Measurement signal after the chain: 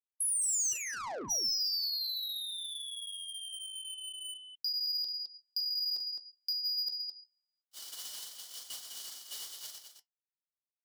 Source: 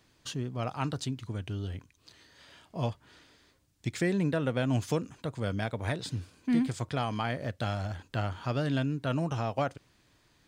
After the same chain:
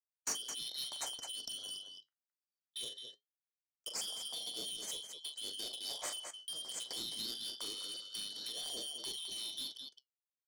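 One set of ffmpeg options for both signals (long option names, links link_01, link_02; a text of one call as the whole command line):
ffmpeg -i in.wav -filter_complex "[0:a]afftfilt=real='real(if(lt(b,272),68*(eq(floor(b/68),0)*2+eq(floor(b/68),1)*3+eq(floor(b/68),2)*0+eq(floor(b/68),3)*1)+mod(b,68),b),0)':imag='imag(if(lt(b,272),68*(eq(floor(b/68),0)*2+eq(floor(b/68),1)*3+eq(floor(b/68),2)*0+eq(floor(b/68),3)*1)+mod(b,68),b),0)':win_size=2048:overlap=0.75,anlmdn=0.01,agate=range=-42dB:threshold=-42dB:ratio=16:detection=peak,acrossover=split=4400[link_01][link_02];[link_02]acompressor=threshold=-38dB:ratio=4:attack=1:release=60[link_03];[link_01][link_03]amix=inputs=2:normalize=0,equalizer=frequency=62:width_type=o:width=1.8:gain=-11,acrossover=split=760[link_04][link_05];[link_05]acompressor=threshold=-40dB:ratio=12[link_06];[link_04][link_06]amix=inputs=2:normalize=0,flanger=delay=4:depth=6.6:regen=-68:speed=0.23:shape=sinusoidal,aecho=1:1:40.82|212.8:0.355|0.355,asplit=2[link_07][link_08];[link_08]highpass=frequency=720:poles=1,volume=15dB,asoftclip=type=tanh:threshold=-32.5dB[link_09];[link_07][link_09]amix=inputs=2:normalize=0,lowpass=frequency=2300:poles=1,volume=-6dB,aexciter=amount=4.7:drive=8.5:freq=4500" out.wav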